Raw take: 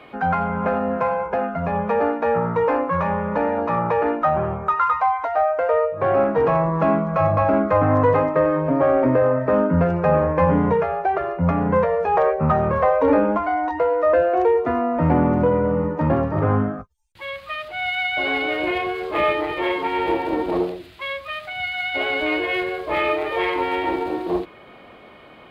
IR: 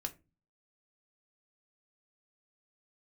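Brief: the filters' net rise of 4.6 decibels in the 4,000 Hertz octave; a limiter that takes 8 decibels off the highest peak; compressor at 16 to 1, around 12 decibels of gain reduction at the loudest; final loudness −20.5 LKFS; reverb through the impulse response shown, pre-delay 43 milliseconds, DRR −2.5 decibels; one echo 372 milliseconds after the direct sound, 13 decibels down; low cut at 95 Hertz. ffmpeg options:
-filter_complex "[0:a]highpass=95,equalizer=frequency=4000:width_type=o:gain=7,acompressor=threshold=-25dB:ratio=16,alimiter=limit=-22dB:level=0:latency=1,aecho=1:1:372:0.224,asplit=2[link_01][link_02];[1:a]atrim=start_sample=2205,adelay=43[link_03];[link_02][link_03]afir=irnorm=-1:irlink=0,volume=3.5dB[link_04];[link_01][link_04]amix=inputs=2:normalize=0,volume=5.5dB"

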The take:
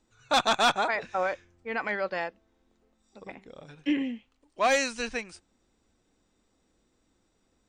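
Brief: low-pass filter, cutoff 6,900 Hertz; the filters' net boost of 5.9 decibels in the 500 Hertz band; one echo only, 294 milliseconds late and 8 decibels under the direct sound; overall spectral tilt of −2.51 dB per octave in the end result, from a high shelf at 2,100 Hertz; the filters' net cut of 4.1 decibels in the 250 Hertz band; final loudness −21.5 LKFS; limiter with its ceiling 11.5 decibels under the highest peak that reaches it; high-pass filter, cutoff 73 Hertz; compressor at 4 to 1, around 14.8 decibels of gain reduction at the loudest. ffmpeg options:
ffmpeg -i in.wav -af "highpass=73,lowpass=6900,equalizer=frequency=250:width_type=o:gain=-7.5,equalizer=frequency=500:width_type=o:gain=8,highshelf=frequency=2100:gain=6.5,acompressor=threshold=-34dB:ratio=4,alimiter=level_in=6dB:limit=-24dB:level=0:latency=1,volume=-6dB,aecho=1:1:294:0.398,volume=19dB" out.wav

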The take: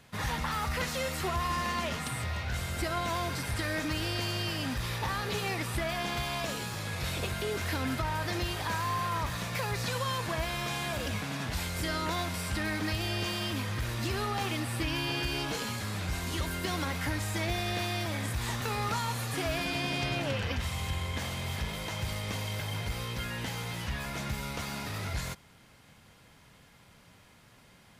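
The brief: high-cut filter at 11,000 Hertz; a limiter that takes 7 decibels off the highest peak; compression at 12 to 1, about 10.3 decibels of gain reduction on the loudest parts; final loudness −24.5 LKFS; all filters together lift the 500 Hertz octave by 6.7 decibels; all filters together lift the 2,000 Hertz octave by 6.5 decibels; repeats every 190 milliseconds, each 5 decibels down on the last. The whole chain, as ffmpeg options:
ffmpeg -i in.wav -af "lowpass=11000,equalizer=frequency=500:width_type=o:gain=8.5,equalizer=frequency=2000:width_type=o:gain=7.5,acompressor=threshold=-34dB:ratio=12,alimiter=level_in=6.5dB:limit=-24dB:level=0:latency=1,volume=-6.5dB,aecho=1:1:190|380|570|760|950|1140|1330:0.562|0.315|0.176|0.0988|0.0553|0.031|0.0173,volume=13dB" out.wav

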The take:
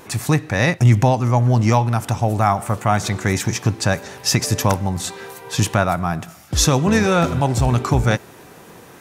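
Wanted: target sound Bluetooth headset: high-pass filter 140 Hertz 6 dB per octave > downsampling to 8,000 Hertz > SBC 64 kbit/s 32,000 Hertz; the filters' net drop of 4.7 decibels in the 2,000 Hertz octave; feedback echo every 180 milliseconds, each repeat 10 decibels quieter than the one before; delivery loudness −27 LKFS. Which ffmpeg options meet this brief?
ffmpeg -i in.wav -af "highpass=frequency=140:poles=1,equalizer=frequency=2000:width_type=o:gain=-6,aecho=1:1:180|360|540|720:0.316|0.101|0.0324|0.0104,aresample=8000,aresample=44100,volume=-6dB" -ar 32000 -c:a sbc -b:a 64k out.sbc

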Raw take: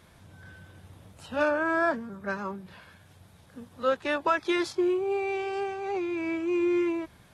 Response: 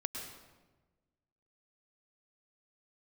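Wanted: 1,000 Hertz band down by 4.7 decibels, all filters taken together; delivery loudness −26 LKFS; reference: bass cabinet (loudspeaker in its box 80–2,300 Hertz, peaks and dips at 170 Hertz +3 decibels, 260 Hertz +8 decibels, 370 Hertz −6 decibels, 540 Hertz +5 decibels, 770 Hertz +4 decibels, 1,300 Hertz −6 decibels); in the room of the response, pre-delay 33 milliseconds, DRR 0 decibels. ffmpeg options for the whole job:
-filter_complex "[0:a]equalizer=frequency=1000:width_type=o:gain=-7,asplit=2[link_01][link_02];[1:a]atrim=start_sample=2205,adelay=33[link_03];[link_02][link_03]afir=irnorm=-1:irlink=0,volume=-1dB[link_04];[link_01][link_04]amix=inputs=2:normalize=0,highpass=frequency=80:width=0.5412,highpass=frequency=80:width=1.3066,equalizer=frequency=170:width_type=q:width=4:gain=3,equalizer=frequency=260:width_type=q:width=4:gain=8,equalizer=frequency=370:width_type=q:width=4:gain=-6,equalizer=frequency=540:width_type=q:width=4:gain=5,equalizer=frequency=770:width_type=q:width=4:gain=4,equalizer=frequency=1300:width_type=q:width=4:gain=-6,lowpass=frequency=2300:width=0.5412,lowpass=frequency=2300:width=1.3066,volume=2dB"

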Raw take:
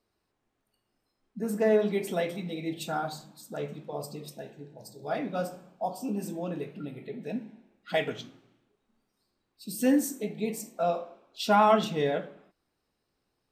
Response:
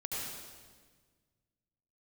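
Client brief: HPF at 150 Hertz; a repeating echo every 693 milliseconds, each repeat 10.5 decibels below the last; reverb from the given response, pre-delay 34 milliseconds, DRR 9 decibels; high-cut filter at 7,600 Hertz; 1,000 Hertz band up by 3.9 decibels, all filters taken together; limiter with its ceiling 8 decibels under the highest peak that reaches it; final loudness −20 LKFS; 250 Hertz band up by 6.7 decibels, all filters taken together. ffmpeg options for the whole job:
-filter_complex "[0:a]highpass=150,lowpass=7600,equalizer=frequency=250:width_type=o:gain=8.5,equalizer=frequency=1000:width_type=o:gain=4.5,alimiter=limit=-14dB:level=0:latency=1,aecho=1:1:693|1386|2079:0.299|0.0896|0.0269,asplit=2[link_01][link_02];[1:a]atrim=start_sample=2205,adelay=34[link_03];[link_02][link_03]afir=irnorm=-1:irlink=0,volume=-11.5dB[link_04];[link_01][link_04]amix=inputs=2:normalize=0,volume=8dB"

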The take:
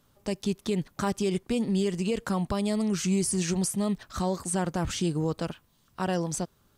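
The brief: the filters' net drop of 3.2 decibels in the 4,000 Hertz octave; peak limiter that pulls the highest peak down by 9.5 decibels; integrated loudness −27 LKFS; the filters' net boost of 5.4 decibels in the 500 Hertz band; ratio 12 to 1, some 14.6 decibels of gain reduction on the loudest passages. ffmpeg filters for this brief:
ffmpeg -i in.wav -af "equalizer=frequency=500:width_type=o:gain=7,equalizer=frequency=4000:width_type=o:gain=-4.5,acompressor=threshold=-34dB:ratio=12,volume=13.5dB,alimiter=limit=-17dB:level=0:latency=1" out.wav

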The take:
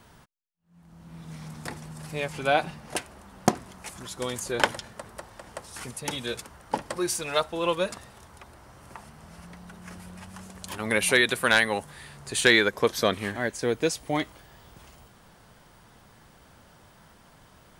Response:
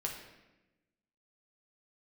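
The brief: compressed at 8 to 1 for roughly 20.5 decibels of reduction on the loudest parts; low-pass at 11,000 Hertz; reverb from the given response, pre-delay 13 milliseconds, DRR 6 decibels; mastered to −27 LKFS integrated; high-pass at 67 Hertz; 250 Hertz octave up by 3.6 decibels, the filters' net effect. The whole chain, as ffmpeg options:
-filter_complex "[0:a]highpass=67,lowpass=11000,equalizer=frequency=250:width_type=o:gain=5,acompressor=threshold=-38dB:ratio=8,asplit=2[link_01][link_02];[1:a]atrim=start_sample=2205,adelay=13[link_03];[link_02][link_03]afir=irnorm=-1:irlink=0,volume=-7.5dB[link_04];[link_01][link_04]amix=inputs=2:normalize=0,volume=15dB"

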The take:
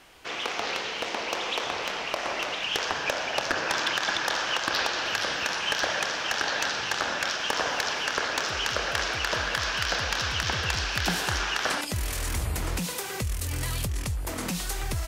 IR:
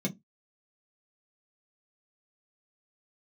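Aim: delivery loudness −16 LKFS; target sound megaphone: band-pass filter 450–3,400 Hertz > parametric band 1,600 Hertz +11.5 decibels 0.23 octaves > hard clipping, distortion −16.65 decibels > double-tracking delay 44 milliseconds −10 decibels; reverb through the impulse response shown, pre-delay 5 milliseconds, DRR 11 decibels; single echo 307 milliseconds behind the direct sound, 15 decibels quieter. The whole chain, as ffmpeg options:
-filter_complex "[0:a]aecho=1:1:307:0.178,asplit=2[link_01][link_02];[1:a]atrim=start_sample=2205,adelay=5[link_03];[link_02][link_03]afir=irnorm=-1:irlink=0,volume=-15dB[link_04];[link_01][link_04]amix=inputs=2:normalize=0,highpass=450,lowpass=3400,equalizer=frequency=1600:width_type=o:width=0.23:gain=11.5,asoftclip=type=hard:threshold=-16dB,asplit=2[link_05][link_06];[link_06]adelay=44,volume=-10dB[link_07];[link_05][link_07]amix=inputs=2:normalize=0,volume=8.5dB"

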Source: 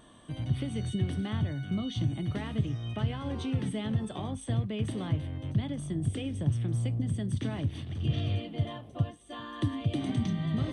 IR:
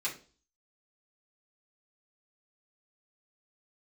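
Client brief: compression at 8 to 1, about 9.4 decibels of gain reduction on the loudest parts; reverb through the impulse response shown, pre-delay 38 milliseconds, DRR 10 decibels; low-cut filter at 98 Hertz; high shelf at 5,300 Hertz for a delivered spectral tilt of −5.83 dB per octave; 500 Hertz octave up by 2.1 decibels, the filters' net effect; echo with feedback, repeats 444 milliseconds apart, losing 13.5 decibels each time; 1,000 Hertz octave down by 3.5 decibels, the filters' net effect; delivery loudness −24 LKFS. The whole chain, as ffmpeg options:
-filter_complex "[0:a]highpass=98,equalizer=frequency=500:width_type=o:gain=4.5,equalizer=frequency=1000:width_type=o:gain=-7.5,highshelf=frequency=5300:gain=9,acompressor=threshold=-34dB:ratio=8,aecho=1:1:444|888:0.211|0.0444,asplit=2[link_01][link_02];[1:a]atrim=start_sample=2205,adelay=38[link_03];[link_02][link_03]afir=irnorm=-1:irlink=0,volume=-14dB[link_04];[link_01][link_04]amix=inputs=2:normalize=0,volume=14.5dB"

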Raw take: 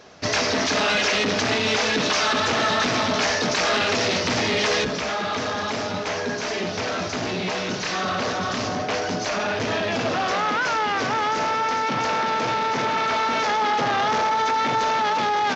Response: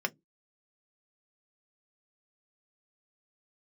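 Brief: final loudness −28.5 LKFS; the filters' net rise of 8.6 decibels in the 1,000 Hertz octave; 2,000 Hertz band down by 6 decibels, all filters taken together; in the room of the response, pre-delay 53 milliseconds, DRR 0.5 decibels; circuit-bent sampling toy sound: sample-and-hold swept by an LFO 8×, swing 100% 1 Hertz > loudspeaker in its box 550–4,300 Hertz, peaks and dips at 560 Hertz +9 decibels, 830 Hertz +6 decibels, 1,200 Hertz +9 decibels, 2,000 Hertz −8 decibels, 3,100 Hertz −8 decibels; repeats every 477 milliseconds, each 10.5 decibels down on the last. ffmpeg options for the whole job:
-filter_complex "[0:a]equalizer=frequency=1000:width_type=o:gain=5,equalizer=frequency=2000:width_type=o:gain=-8,aecho=1:1:477|954|1431:0.299|0.0896|0.0269,asplit=2[link_01][link_02];[1:a]atrim=start_sample=2205,adelay=53[link_03];[link_02][link_03]afir=irnorm=-1:irlink=0,volume=-6.5dB[link_04];[link_01][link_04]amix=inputs=2:normalize=0,acrusher=samples=8:mix=1:aa=0.000001:lfo=1:lforange=8:lforate=1,highpass=550,equalizer=frequency=560:width_type=q:width=4:gain=9,equalizer=frequency=830:width_type=q:width=4:gain=6,equalizer=frequency=1200:width_type=q:width=4:gain=9,equalizer=frequency=2000:width_type=q:width=4:gain=-8,equalizer=frequency=3100:width_type=q:width=4:gain=-8,lowpass=frequency=4300:width=0.5412,lowpass=frequency=4300:width=1.3066,volume=-13dB"

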